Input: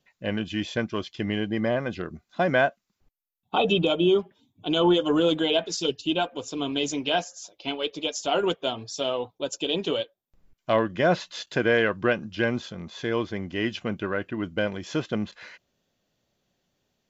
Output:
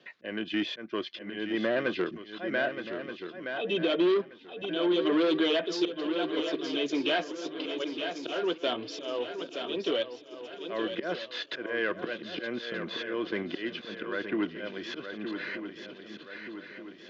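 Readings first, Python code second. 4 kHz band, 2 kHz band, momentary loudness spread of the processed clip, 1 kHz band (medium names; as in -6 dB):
-5.0 dB, -4.0 dB, 13 LU, -8.5 dB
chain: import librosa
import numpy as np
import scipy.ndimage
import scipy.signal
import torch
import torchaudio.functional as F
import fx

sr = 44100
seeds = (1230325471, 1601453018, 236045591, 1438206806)

p1 = fx.level_steps(x, sr, step_db=16)
p2 = x + F.gain(torch.from_numpy(p1), 1.0).numpy()
p3 = fx.auto_swell(p2, sr, attack_ms=524.0)
p4 = 10.0 ** (-21.0 / 20.0) * np.tanh(p3 / 10.0 ** (-21.0 / 20.0))
p5 = fx.cabinet(p4, sr, low_hz=290.0, low_slope=12, high_hz=4200.0, hz=(340.0, 830.0, 1700.0), db=(5, -8, 4))
p6 = fx.echo_swing(p5, sr, ms=1227, ratio=3, feedback_pct=35, wet_db=-10)
p7 = fx.band_squash(p6, sr, depth_pct=40)
y = F.gain(torch.from_numpy(p7), 1.0).numpy()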